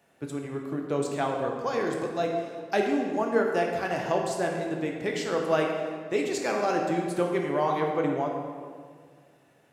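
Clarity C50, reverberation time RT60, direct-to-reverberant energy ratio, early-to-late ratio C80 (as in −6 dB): 3.0 dB, 1.9 s, 0.5 dB, 4.5 dB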